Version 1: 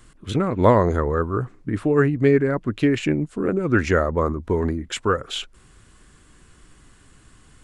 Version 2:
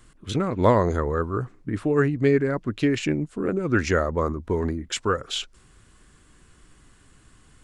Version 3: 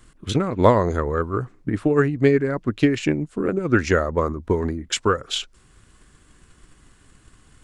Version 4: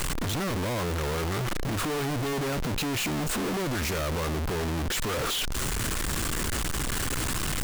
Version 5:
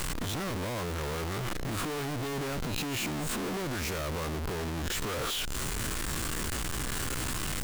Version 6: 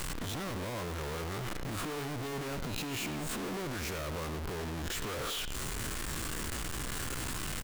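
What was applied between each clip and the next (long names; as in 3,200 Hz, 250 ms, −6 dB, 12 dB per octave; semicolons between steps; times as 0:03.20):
dynamic equaliser 5,400 Hz, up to +7 dB, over −48 dBFS, Q 1.1; level −3 dB
transient designer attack +5 dB, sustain −1 dB; level +1 dB
sign of each sample alone; level −6 dB
peak hold with a rise ahead of every peak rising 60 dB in 0.38 s; level −5.5 dB
far-end echo of a speakerphone 100 ms, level −9 dB; level −4 dB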